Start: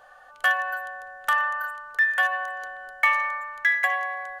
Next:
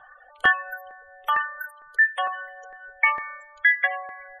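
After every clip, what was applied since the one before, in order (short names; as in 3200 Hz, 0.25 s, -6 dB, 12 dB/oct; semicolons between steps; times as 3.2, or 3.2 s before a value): reverb removal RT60 0.74 s; spectral gate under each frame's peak -25 dB strong; LFO notch saw up 2.2 Hz 470–2100 Hz; gain +4 dB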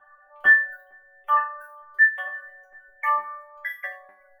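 median filter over 5 samples; band shelf 5200 Hz -10 dB; resonator bank G3 fifth, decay 0.32 s; gain +9 dB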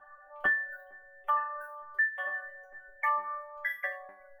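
tilt shelf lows +4 dB, about 1300 Hz; de-hum 373.5 Hz, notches 2; compressor 6:1, threshold -26 dBFS, peak gain reduction 13 dB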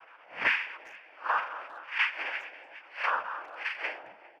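spectral swells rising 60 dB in 0.31 s; noise vocoder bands 8; speakerphone echo 0.4 s, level -23 dB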